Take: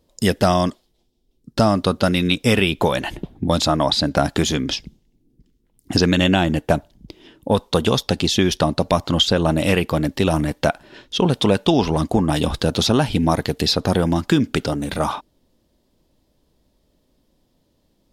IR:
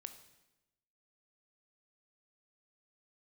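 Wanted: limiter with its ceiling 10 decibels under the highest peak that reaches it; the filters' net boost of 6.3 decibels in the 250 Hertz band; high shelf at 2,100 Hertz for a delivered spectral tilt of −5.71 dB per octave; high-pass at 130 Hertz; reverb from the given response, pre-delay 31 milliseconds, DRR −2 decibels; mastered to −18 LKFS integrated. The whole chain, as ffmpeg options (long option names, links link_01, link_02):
-filter_complex "[0:a]highpass=130,equalizer=frequency=250:width_type=o:gain=9,highshelf=frequency=2100:gain=-6,alimiter=limit=-9dB:level=0:latency=1,asplit=2[link_01][link_02];[1:a]atrim=start_sample=2205,adelay=31[link_03];[link_02][link_03]afir=irnorm=-1:irlink=0,volume=7dB[link_04];[link_01][link_04]amix=inputs=2:normalize=0,volume=-2dB"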